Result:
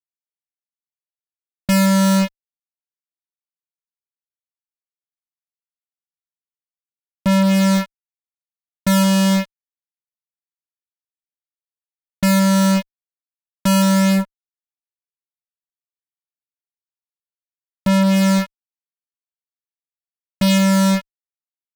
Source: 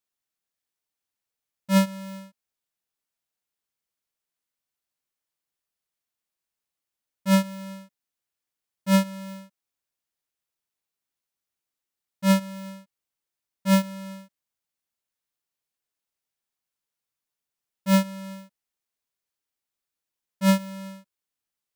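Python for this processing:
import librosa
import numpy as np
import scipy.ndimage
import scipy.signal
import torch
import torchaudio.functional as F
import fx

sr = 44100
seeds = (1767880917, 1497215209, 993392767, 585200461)

y = fx.rotary(x, sr, hz=0.85)
y = fx.fuzz(y, sr, gain_db=46.0, gate_db=-49.0)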